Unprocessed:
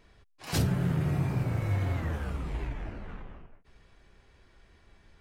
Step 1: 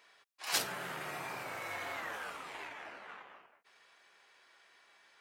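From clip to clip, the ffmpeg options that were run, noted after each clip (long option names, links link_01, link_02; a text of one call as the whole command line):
ffmpeg -i in.wav -af "highpass=850,volume=3dB" out.wav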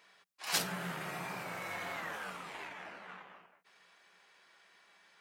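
ffmpeg -i in.wav -af "equalizer=frequency=180:width_type=o:width=0.31:gain=14" out.wav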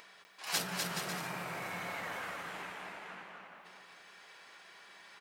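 ffmpeg -i in.wav -filter_complex "[0:a]acompressor=mode=upward:threshold=-47dB:ratio=2.5,asplit=2[link_01][link_02];[link_02]aecho=0:1:250|425|547.5|633.2|693.3:0.631|0.398|0.251|0.158|0.1[link_03];[link_01][link_03]amix=inputs=2:normalize=0,volume=-1.5dB" out.wav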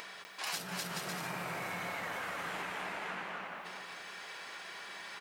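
ffmpeg -i in.wav -af "acompressor=threshold=-45dB:ratio=16,volume=9.5dB" out.wav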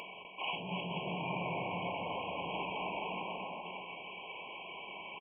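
ffmpeg -i in.wav -af "aresample=8000,aresample=44100,afftfilt=real='re*eq(mod(floor(b*sr/1024/1100),2),0)':imag='im*eq(mod(floor(b*sr/1024/1100),2),0)':win_size=1024:overlap=0.75,volume=4.5dB" out.wav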